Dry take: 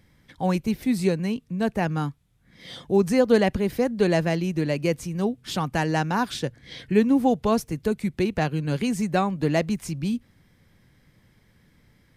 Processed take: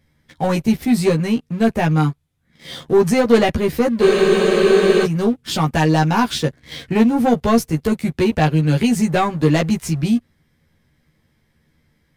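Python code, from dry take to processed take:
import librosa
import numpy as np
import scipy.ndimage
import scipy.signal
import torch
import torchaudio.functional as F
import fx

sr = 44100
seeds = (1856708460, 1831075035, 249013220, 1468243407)

y = fx.leveller(x, sr, passes=2)
y = fx.doubler(y, sr, ms=13.0, db=-2.0)
y = fx.spec_freeze(y, sr, seeds[0], at_s=4.03, hold_s=1.01)
y = y * 10.0 ** (-1.0 / 20.0)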